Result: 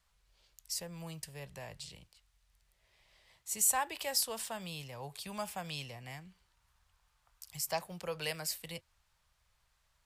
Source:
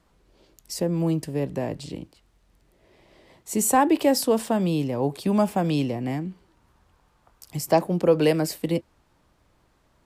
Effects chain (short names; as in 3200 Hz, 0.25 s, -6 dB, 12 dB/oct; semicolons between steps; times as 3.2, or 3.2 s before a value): passive tone stack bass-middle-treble 10-0-10; gain -3 dB